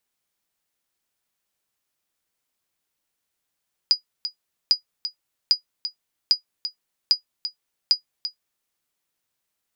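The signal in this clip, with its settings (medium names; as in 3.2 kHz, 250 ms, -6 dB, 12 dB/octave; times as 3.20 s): sonar ping 4.91 kHz, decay 0.11 s, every 0.80 s, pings 6, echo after 0.34 s, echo -11.5 dB -7 dBFS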